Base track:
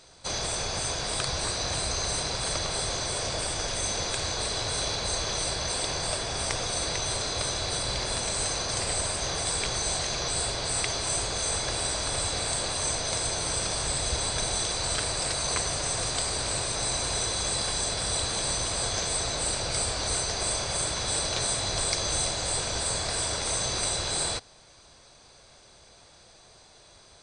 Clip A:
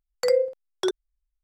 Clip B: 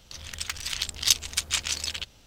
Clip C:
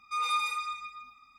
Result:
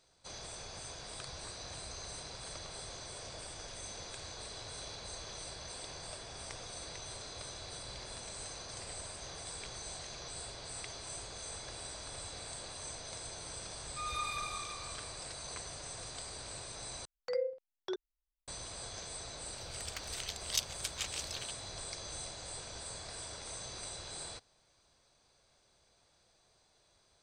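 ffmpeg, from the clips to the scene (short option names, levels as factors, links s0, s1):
-filter_complex "[0:a]volume=0.158[s0];[3:a]asplit=7[s1][s2][s3][s4][s5][s6][s7];[s2]adelay=178,afreqshift=-42,volume=0.562[s8];[s3]adelay=356,afreqshift=-84,volume=0.254[s9];[s4]adelay=534,afreqshift=-126,volume=0.114[s10];[s5]adelay=712,afreqshift=-168,volume=0.0513[s11];[s6]adelay=890,afreqshift=-210,volume=0.0232[s12];[s7]adelay=1068,afreqshift=-252,volume=0.0104[s13];[s1][s8][s9][s10][s11][s12][s13]amix=inputs=7:normalize=0[s14];[1:a]lowpass=f=5200:w=0.5412,lowpass=f=5200:w=1.3066[s15];[s0]asplit=2[s16][s17];[s16]atrim=end=17.054[s18];[s15]atrim=end=1.43,asetpts=PTS-STARTPTS,volume=0.211[s19];[s17]atrim=start=18.476[s20];[s14]atrim=end=1.38,asetpts=PTS-STARTPTS,volume=0.316,afade=t=in:d=0.004:c=hsin,afade=t=out:st=1.376:d=0.004:c=hsin,adelay=13850[s21];[2:a]atrim=end=2.26,asetpts=PTS-STARTPTS,volume=0.237,afade=t=in:d=0.004:c=hsin,afade=t=out:st=2.256:d=0.004:c=hsin,adelay=19470[s22];[s18][s19]acrossfade=d=0.004:c1=hsin:c2=hsin[s23];[s23][s20]acrossfade=d=0.004:c1=hsin:c2=hsin[s24];[s24][s21][s22]amix=inputs=3:normalize=0"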